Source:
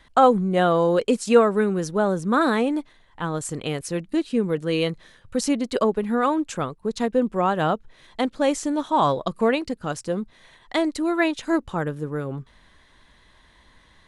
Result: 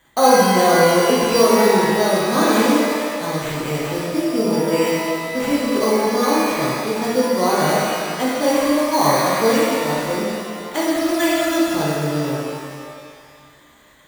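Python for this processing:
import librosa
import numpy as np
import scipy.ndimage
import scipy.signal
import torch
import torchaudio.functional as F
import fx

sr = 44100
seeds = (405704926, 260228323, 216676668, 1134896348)

y = fx.notch_comb(x, sr, f0_hz=1400.0)
y = fx.sample_hold(y, sr, seeds[0], rate_hz=5200.0, jitter_pct=0)
y = fx.rev_shimmer(y, sr, seeds[1], rt60_s=2.1, semitones=12, shimmer_db=-8, drr_db=-7.5)
y = y * 10.0 ** (-3.0 / 20.0)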